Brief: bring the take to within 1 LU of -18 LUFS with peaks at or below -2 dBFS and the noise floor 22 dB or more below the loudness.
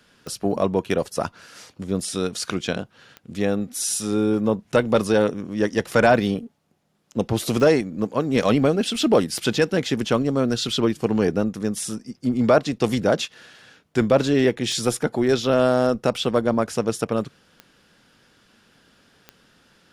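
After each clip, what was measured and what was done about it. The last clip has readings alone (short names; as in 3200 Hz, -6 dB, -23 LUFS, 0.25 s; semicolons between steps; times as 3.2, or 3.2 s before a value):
clicks 7; loudness -22.0 LUFS; peak -7.5 dBFS; loudness target -18.0 LUFS
-> de-click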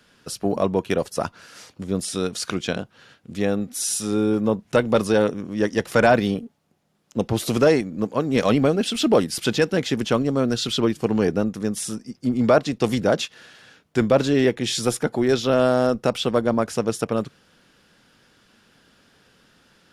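clicks 0; loudness -22.0 LUFS; peak -7.5 dBFS; loudness target -18.0 LUFS
-> gain +4 dB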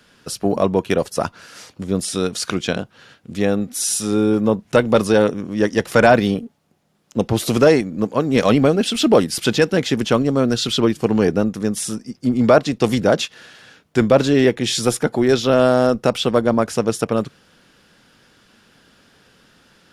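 loudness -18.0 LUFS; peak -3.5 dBFS; noise floor -58 dBFS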